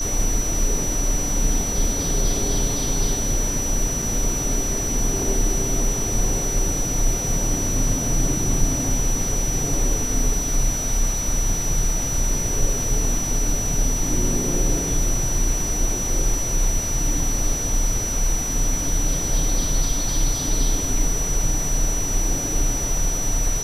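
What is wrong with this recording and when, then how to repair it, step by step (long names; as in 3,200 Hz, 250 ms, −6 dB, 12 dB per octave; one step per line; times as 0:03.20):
whistle 5,900 Hz −25 dBFS
0:04.02: drop-out 4.3 ms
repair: notch filter 5,900 Hz, Q 30
repair the gap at 0:04.02, 4.3 ms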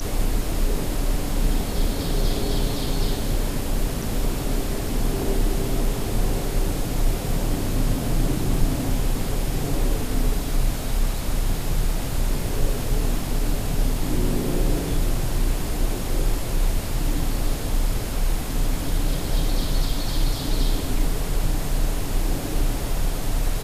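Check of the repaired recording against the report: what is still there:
none of them is left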